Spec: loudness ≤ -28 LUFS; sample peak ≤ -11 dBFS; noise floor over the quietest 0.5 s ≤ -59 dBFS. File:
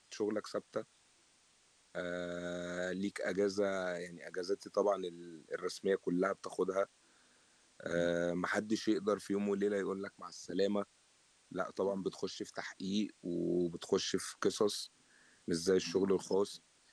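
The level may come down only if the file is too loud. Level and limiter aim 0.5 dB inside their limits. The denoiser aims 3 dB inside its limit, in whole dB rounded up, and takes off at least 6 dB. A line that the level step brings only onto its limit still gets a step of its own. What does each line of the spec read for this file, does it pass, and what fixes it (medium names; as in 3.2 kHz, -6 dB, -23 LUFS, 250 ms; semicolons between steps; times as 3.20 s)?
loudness -37.0 LUFS: pass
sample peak -19.0 dBFS: pass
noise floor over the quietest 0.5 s -69 dBFS: pass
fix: none needed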